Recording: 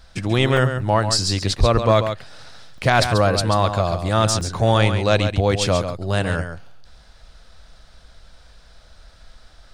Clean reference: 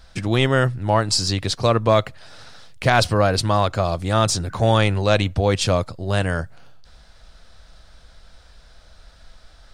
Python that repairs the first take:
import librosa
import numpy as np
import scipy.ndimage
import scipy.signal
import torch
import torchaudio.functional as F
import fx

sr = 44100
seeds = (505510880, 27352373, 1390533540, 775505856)

y = fx.highpass(x, sr, hz=140.0, slope=24, at=(1.59, 1.71), fade=0.02)
y = fx.fix_interpolate(y, sr, at_s=(0.57, 2.78, 4.41, 5.9), length_ms=2.3)
y = fx.fix_echo_inverse(y, sr, delay_ms=137, level_db=-8.5)